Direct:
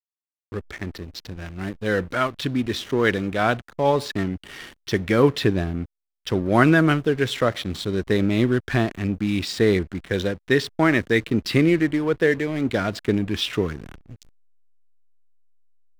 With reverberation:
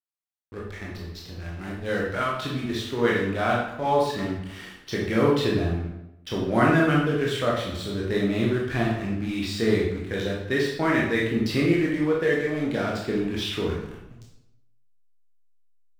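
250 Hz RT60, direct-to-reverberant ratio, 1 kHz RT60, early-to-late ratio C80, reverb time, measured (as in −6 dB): 0.95 s, −4.5 dB, 0.80 s, 5.5 dB, 0.85 s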